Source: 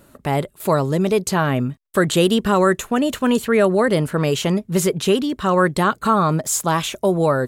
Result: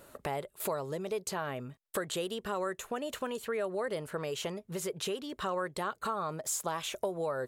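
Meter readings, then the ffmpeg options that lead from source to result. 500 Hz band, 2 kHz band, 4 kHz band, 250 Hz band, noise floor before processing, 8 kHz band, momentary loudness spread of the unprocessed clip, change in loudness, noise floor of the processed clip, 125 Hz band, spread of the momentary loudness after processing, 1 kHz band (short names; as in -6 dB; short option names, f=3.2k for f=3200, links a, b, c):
-16.0 dB, -16.5 dB, -14.0 dB, -22.5 dB, -55 dBFS, -12.5 dB, 5 LU, -17.0 dB, -70 dBFS, -23.0 dB, 4 LU, -16.0 dB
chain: -af "acompressor=threshold=-28dB:ratio=8,lowshelf=f=350:t=q:w=1.5:g=-6.5,volume=-3dB"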